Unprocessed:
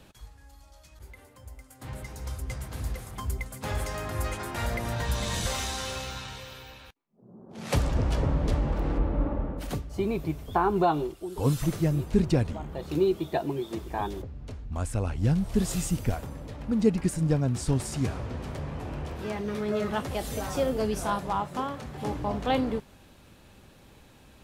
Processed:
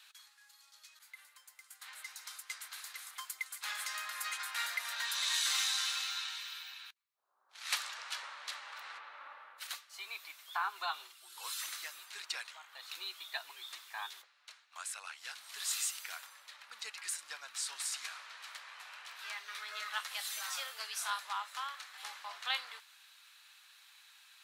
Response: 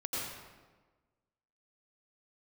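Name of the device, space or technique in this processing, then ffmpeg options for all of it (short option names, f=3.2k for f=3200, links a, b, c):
headphones lying on a table: -af "highpass=f=1.3k:w=0.5412,highpass=f=1.3k:w=1.3066,equalizer=f=4k:t=o:w=0.3:g=6"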